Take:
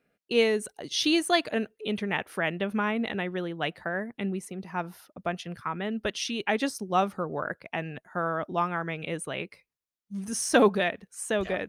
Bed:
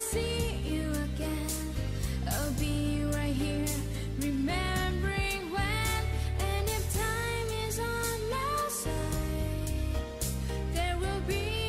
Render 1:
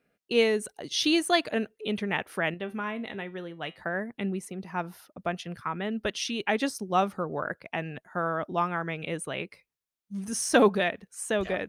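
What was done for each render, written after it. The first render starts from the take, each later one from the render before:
0:02.54–0:03.79: tuned comb filter 130 Hz, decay 0.25 s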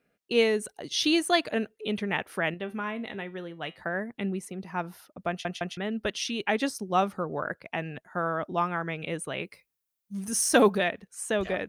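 0:05.29: stutter in place 0.16 s, 3 plays
0:09.42–0:10.78: high-shelf EQ 9,700 Hz +11.5 dB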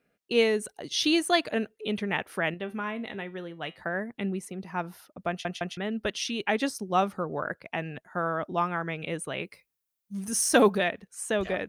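no processing that can be heard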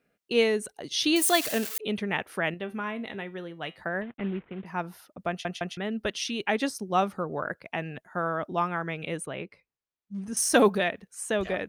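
0:01.16–0:01.78: spike at every zero crossing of −21 dBFS
0:04.01–0:04.66: variable-slope delta modulation 16 kbit/s
0:09.26–0:10.37: head-to-tape spacing loss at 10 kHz 21 dB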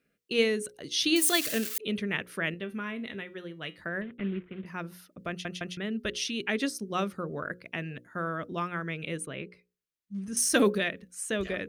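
parametric band 810 Hz −13.5 dB 0.75 octaves
mains-hum notches 60/120/180/240/300/360/420/480/540 Hz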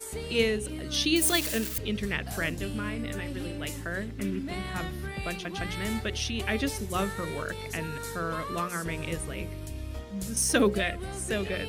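mix in bed −5.5 dB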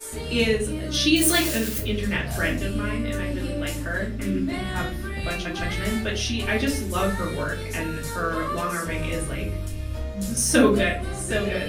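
rectangular room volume 180 cubic metres, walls furnished, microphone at 2.6 metres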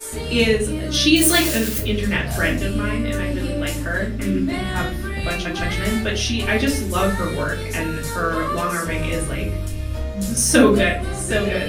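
level +4.5 dB
brickwall limiter −2 dBFS, peak gain reduction 1.5 dB

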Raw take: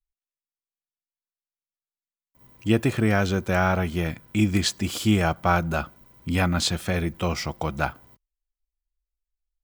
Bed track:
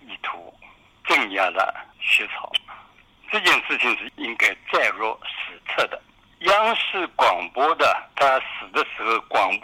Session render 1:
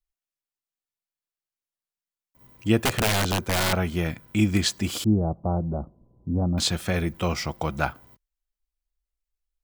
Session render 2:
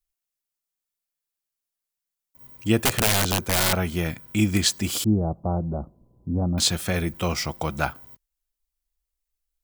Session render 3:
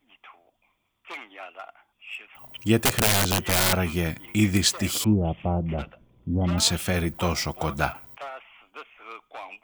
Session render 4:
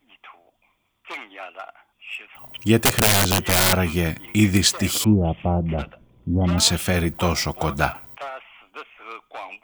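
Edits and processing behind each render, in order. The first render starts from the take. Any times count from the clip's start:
0:02.83–0:03.73: wrap-around overflow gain 16.5 dB; 0:05.04–0:06.58: Bessel low-pass filter 510 Hz, order 8
high-shelf EQ 5,700 Hz +8.5 dB
mix in bed track −20 dB
level +4 dB; brickwall limiter −3 dBFS, peak gain reduction 1.5 dB

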